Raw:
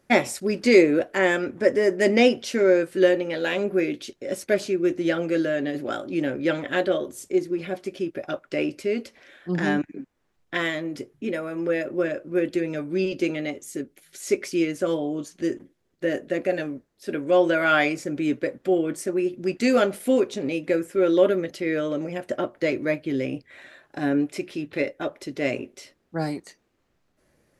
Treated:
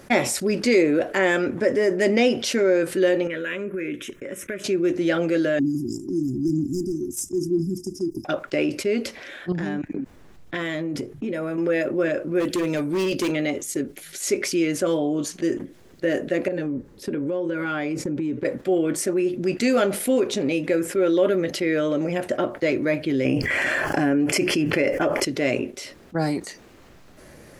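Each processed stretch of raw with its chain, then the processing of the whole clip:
3.27–4.64 s: peaking EQ 1 kHz +5 dB 2.7 oct + compression 5:1, threshold -33 dBFS + static phaser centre 1.9 kHz, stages 4
5.59–8.25 s: overload inside the chain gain 15.5 dB + brick-wall FIR band-stop 380–4800 Hz + phaser 1 Hz, delay 2.4 ms, feedback 56%
9.52–11.58 s: bass shelf 370 Hz +7.5 dB + compression, threshold -33 dBFS
12.40–13.32 s: hard clipper -23 dBFS + treble shelf 6.8 kHz +11 dB
16.48–18.45 s: tilt shelf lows +6.5 dB, about 840 Hz + compression, threshold -30 dBFS + Butterworth band-stop 670 Hz, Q 4.6
23.25–25.25 s: Butterworth band-stop 3.8 kHz, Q 4.3 + level flattener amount 70%
whole clip: gate -39 dBFS, range -9 dB; level flattener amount 50%; trim -4 dB

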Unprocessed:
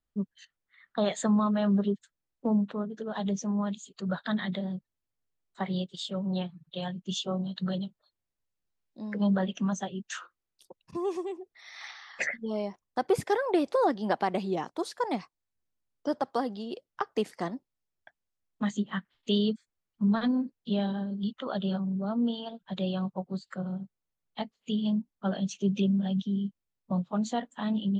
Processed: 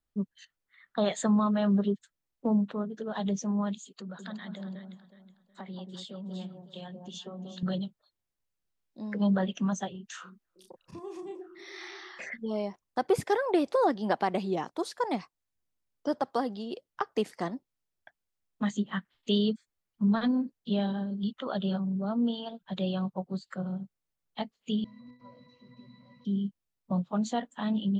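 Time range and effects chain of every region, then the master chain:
3.82–7.63 s: compression 4:1, threshold -41 dBFS + resonant low shelf 140 Hz -11 dB, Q 1.5 + echo whose repeats swap between lows and highs 184 ms, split 1 kHz, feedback 55%, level -5 dB
9.91–12.32 s: compression 4:1, threshold -41 dBFS + doubling 33 ms -4 dB + repeats whose band climbs or falls 323 ms, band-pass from 250 Hz, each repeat 0.7 oct, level -8 dB
24.84–26.25 s: one-bit delta coder 32 kbps, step -31.5 dBFS + pitch-class resonator B, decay 0.32 s
whole clip: none

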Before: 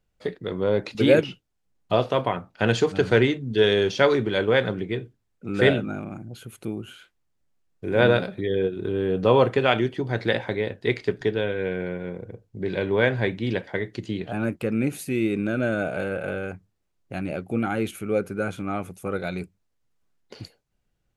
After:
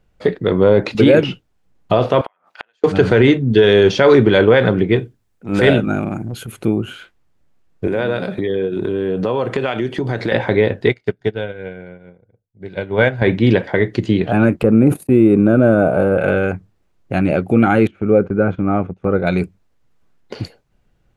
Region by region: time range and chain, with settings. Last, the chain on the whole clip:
2.21–2.84 s: high-pass 960 Hz + compression 2.5:1, threshold -32 dBFS + inverted gate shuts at -25 dBFS, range -40 dB
4.96–6.52 s: treble shelf 5.2 kHz +11.5 dB + transient shaper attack -12 dB, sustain -5 dB
7.87–10.32 s: high-pass 110 Hz + peaking EQ 8.9 kHz +7 dB 1.6 oct + compression 5:1, threshold -30 dBFS
10.89–13.22 s: treble shelf 6.4 kHz +8.5 dB + comb 1.4 ms, depth 31% + upward expansion 2.5:1, over -39 dBFS
14.63–16.18 s: gate -33 dBFS, range -52 dB + high-order bell 3.4 kHz -12 dB 2.4 oct + decay stretcher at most 150 dB/s
17.87–19.27 s: tape spacing loss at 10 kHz 42 dB + upward compressor, threshold -46 dBFS + gate -42 dBFS, range -11 dB
whole clip: treble shelf 3.6 kHz -10 dB; loudness maximiser +15 dB; trim -1 dB

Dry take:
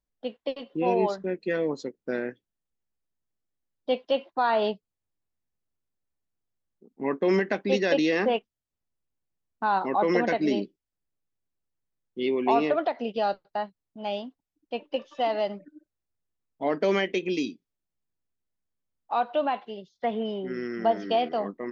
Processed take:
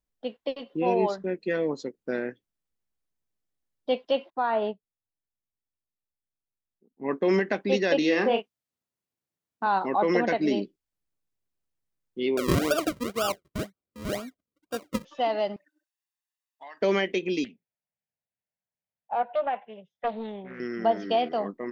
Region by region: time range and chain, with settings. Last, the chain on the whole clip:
4.30–7.09 s: distance through air 370 m + upward expansion, over -41 dBFS
7.98–9.67 s: high-pass 130 Hz + doubling 34 ms -6.5 dB
12.37–15.05 s: decimation with a swept rate 41× 2 Hz + comb of notches 870 Hz
15.56–16.82 s: high-pass 1.2 kHz + compression 3:1, threshold -44 dBFS + comb 1.1 ms, depth 57%
17.44–20.60 s: band-pass 140–2600 Hz + static phaser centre 1.2 kHz, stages 6 + loudspeaker Doppler distortion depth 0.35 ms
whole clip: none

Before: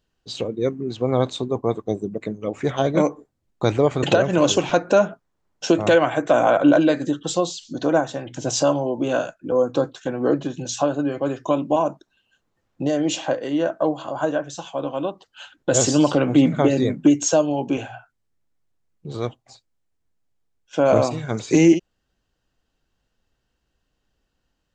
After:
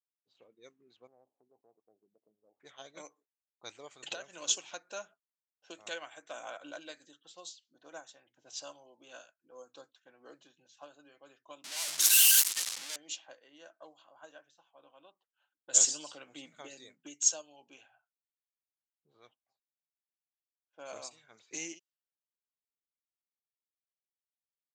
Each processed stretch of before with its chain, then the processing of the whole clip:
1.07–2.60 s: Chebyshev low-pass 820 Hz, order 4 + compression 2:1, threshold -26 dBFS + bass shelf 480 Hz -6.5 dB
11.64–12.96 s: one-bit comparator + treble shelf 2.3 kHz +11.5 dB
whole clip: level-controlled noise filter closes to 670 Hz, open at -15 dBFS; differentiator; upward expansion 1.5:1, over -44 dBFS

